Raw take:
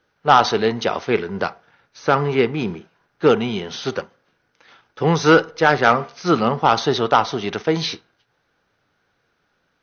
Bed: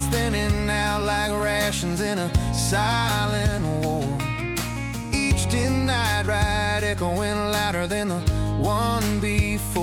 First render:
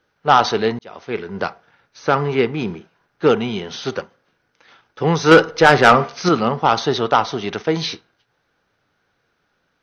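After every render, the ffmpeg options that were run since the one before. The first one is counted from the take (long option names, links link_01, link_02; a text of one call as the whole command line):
ffmpeg -i in.wav -filter_complex "[0:a]asettb=1/sr,asplit=3[link_01][link_02][link_03];[link_01]atrim=end=5.314[link_04];[link_02]atrim=start=5.31:end=6.29,asetpts=PTS-STARTPTS,afade=type=in:duration=0.004:curve=qsin,afade=type=out:start_time=0.976:duration=0.004:curve=qsin,acontrast=88[link_05];[link_03]atrim=start=6.286[link_06];[link_04][link_05]acrossfade=duration=0.004:curve1=hsin:curve2=qsin[link_07];[link_07][link_06]acrossfade=duration=0.004:curve1=qsin:curve2=hsin,asplit=2[link_08][link_09];[link_08]atrim=end=0.79,asetpts=PTS-STARTPTS,afade=type=out:start_time=0.786:duration=0.004:curve=hsin[link_10];[link_09]atrim=start=0.79,asetpts=PTS-STARTPTS,afade=type=in:duration=0.67[link_11];[link_10][link_11]concat=n=2:v=0:a=1" out.wav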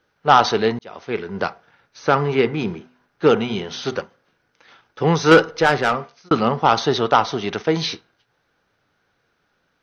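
ffmpeg -i in.wav -filter_complex "[0:a]asettb=1/sr,asplit=3[link_01][link_02][link_03];[link_01]atrim=end=2.264[link_04];[link_02]atrim=start=2.26:end=3.96,asetpts=PTS-STARTPTS,afade=type=in:duration=0.004:curve=qsin,afade=type=out:start_time=1.696:duration=0.004:curve=qsin,bandreject=frequency=124.6:width_type=h:width=4,bandreject=frequency=249.2:width_type=h:width=4,bandreject=frequency=373.8:width_type=h:width=4,bandreject=frequency=498.4:width_type=h:width=4,bandreject=frequency=623:width_type=h:width=4,bandreject=frequency=747.6:width_type=h:width=4,bandreject=frequency=872.2:width_type=h:width=4,bandreject=frequency=996.8:width_type=h:width=4,bandreject=frequency=1121.4:width_type=h:width=4,bandreject=frequency=1246:width_type=h:width=4,bandreject=frequency=1370.6:width_type=h:width=4,bandreject=frequency=1495.2:width_type=h:width=4,bandreject=frequency=1619.8:width_type=h:width=4,bandreject=frequency=1744.4:width_type=h:width=4,bandreject=frequency=1869:width_type=h:width=4,bandreject=frequency=1993.6:width_type=h:width=4,bandreject=frequency=2118.2:width_type=h:width=4[link_05];[link_03]atrim=start=3.956[link_06];[link_04][link_05]acrossfade=duration=0.004:curve1=hsin:curve2=qsin[link_07];[link_07][link_06]acrossfade=duration=0.004:curve1=qsin:curve2=hsin,asplit=2[link_08][link_09];[link_08]atrim=end=6.31,asetpts=PTS-STARTPTS,afade=type=out:start_time=5.13:duration=1.18[link_10];[link_09]atrim=start=6.31,asetpts=PTS-STARTPTS,afade=type=in:duration=0.004:curve=hsin[link_11];[link_10][link_11]concat=n=2:v=0:a=1" out.wav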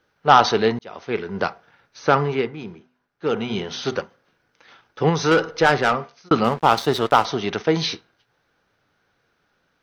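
ffmpeg -i in.wav -filter_complex "[0:a]asettb=1/sr,asplit=3[link_01][link_02][link_03];[link_01]atrim=end=5.094[link_04];[link_02]atrim=start=5.09:end=5.59,asetpts=PTS-STARTPTS,afade=type=in:duration=0.004:curve=qsin,afade=type=out:start_time=0.496:duration=0.004:curve=qsin,acompressor=threshold=-17dB:ratio=2:attack=3.2:release=140:knee=1:detection=peak[link_05];[link_03]atrim=start=5.586[link_06];[link_04][link_05]acrossfade=duration=0.004:curve1=hsin:curve2=qsin[link_07];[link_07][link_06]acrossfade=duration=0.004:curve1=qsin:curve2=hsin,asettb=1/sr,asplit=3[link_08][link_09][link_10];[link_08]atrim=end=6.444[link_11];[link_09]atrim=start=6.44:end=7.25,asetpts=PTS-STARTPTS,afade=type=in:duration=0.004:curve=qsin,afade=type=out:start_time=0.806:duration=0.004:curve=qsin,aeval=exprs='sgn(val(0))*max(abs(val(0))-0.0251,0)':channel_layout=same[link_12];[link_10]atrim=start=7.246[link_13];[link_11][link_12]acrossfade=duration=0.004:curve1=hsin:curve2=qsin[link_14];[link_14][link_13]acrossfade=duration=0.004:curve1=qsin:curve2=hsin,asplit=3[link_15][link_16][link_17];[link_15]atrim=end=2.53,asetpts=PTS-STARTPTS,afade=type=out:start_time=2.18:duration=0.35:silence=0.298538[link_18];[link_16]atrim=start=2.53:end=3.24,asetpts=PTS-STARTPTS,volume=-10.5dB[link_19];[link_17]atrim=start=3.24,asetpts=PTS-STARTPTS,afade=type=in:duration=0.35:silence=0.298538[link_20];[link_18][link_19][link_20]concat=n=3:v=0:a=1" out.wav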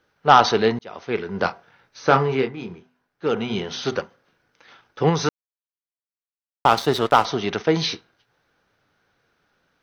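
ffmpeg -i in.wav -filter_complex "[0:a]asettb=1/sr,asplit=3[link_01][link_02][link_03];[link_01]atrim=end=1.384[link_04];[link_02]atrim=start=1.38:end=3.27,asetpts=PTS-STARTPTS,afade=type=in:duration=0.004:curve=qsin,afade=type=out:start_time=1.886:duration=0.004:curve=qsin,asplit=2[link_05][link_06];[link_06]adelay=23,volume=-7dB[link_07];[link_05][link_07]amix=inputs=2:normalize=0,atrim=end_sample=83349[link_08];[link_03]atrim=start=3.266[link_09];[link_04][link_08]acrossfade=duration=0.004:curve1=hsin:curve2=qsin[link_10];[link_10][link_09]acrossfade=duration=0.004:curve1=qsin:curve2=hsin,asplit=3[link_11][link_12][link_13];[link_11]atrim=end=5.29,asetpts=PTS-STARTPTS,afade=type=out:start_time=5.286:duration=0.004:curve=hsin[link_14];[link_12]atrim=start=5.29:end=6.65,asetpts=PTS-STARTPTS,volume=0[link_15];[link_13]atrim=start=6.65,asetpts=PTS-STARTPTS,afade=type=in:duration=0.004:curve=hsin[link_16];[link_14][link_15][link_16]concat=n=3:v=0:a=1" out.wav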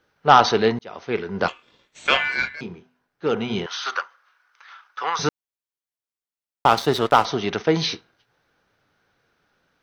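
ffmpeg -i in.wav -filter_complex "[0:a]asettb=1/sr,asplit=3[link_01][link_02][link_03];[link_01]atrim=end=1.484[link_04];[link_02]atrim=start=1.48:end=2.61,asetpts=PTS-STARTPTS,afade=type=in:duration=0.004:curve=qsin,afade=type=out:start_time=1.126:duration=0.004:curve=qsin,aeval=exprs='val(0)*sin(2*PI*1900*n/s)':channel_layout=same[link_05];[link_03]atrim=start=2.606[link_06];[link_04][link_05]acrossfade=duration=0.004:curve1=hsin:curve2=qsin[link_07];[link_07][link_06]acrossfade=duration=0.004:curve1=qsin:curve2=hsin,asettb=1/sr,asplit=3[link_08][link_09][link_10];[link_08]atrim=end=3.664[link_11];[link_09]atrim=start=3.66:end=5.19,asetpts=PTS-STARTPTS,afade=type=in:duration=0.004:curve=qsin,afade=type=out:start_time=1.526:duration=0.004:curve=qsin,highpass=frequency=1200:width_type=q:width=2.8[link_12];[link_10]atrim=start=5.186[link_13];[link_11][link_12]acrossfade=duration=0.004:curve1=hsin:curve2=qsin[link_14];[link_14][link_13]acrossfade=duration=0.004:curve1=qsin:curve2=hsin" out.wav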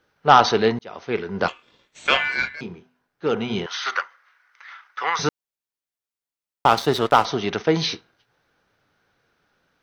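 ffmpeg -i in.wav -filter_complex "[0:a]asettb=1/sr,asplit=3[link_01][link_02][link_03];[link_01]atrim=end=3.744[link_04];[link_02]atrim=start=3.74:end=5.21,asetpts=PTS-STARTPTS,afade=type=in:duration=0.004:curve=qsin,afade=type=out:start_time=1.466:duration=0.004:curve=qsin,equalizer=frequency=2000:width_type=o:width=0.37:gain=10[link_05];[link_03]atrim=start=5.206[link_06];[link_04][link_05]acrossfade=duration=0.004:curve1=hsin:curve2=qsin[link_07];[link_07][link_06]acrossfade=duration=0.004:curve1=qsin:curve2=hsin" out.wav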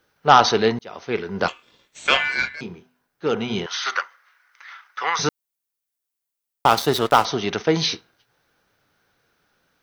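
ffmpeg -i in.wav -af "highshelf=frequency=7400:gain=11.5" out.wav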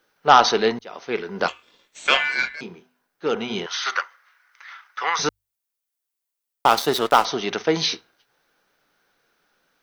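ffmpeg -i in.wav -af "equalizer=frequency=87:width=0.93:gain=-14.5,bandreject=frequency=50:width_type=h:width=6,bandreject=frequency=100:width_type=h:width=6" out.wav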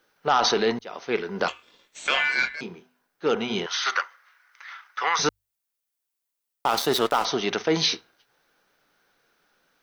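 ffmpeg -i in.wav -af "alimiter=limit=-11dB:level=0:latency=1:release=17" out.wav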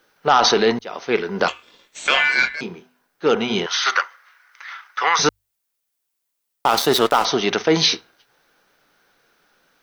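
ffmpeg -i in.wav -af "volume=6dB" out.wav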